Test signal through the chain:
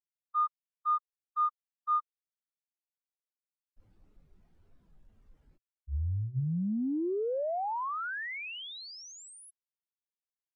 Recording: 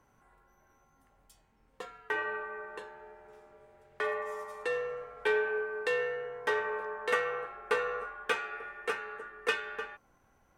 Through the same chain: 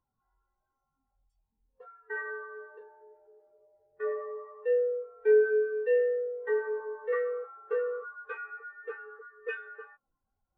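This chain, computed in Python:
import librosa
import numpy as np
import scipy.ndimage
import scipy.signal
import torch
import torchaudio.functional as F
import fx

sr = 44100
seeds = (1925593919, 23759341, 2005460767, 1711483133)

y = fx.power_curve(x, sr, exponent=0.5)
y = fx.hum_notches(y, sr, base_hz=60, count=2)
y = fx.spectral_expand(y, sr, expansion=2.5)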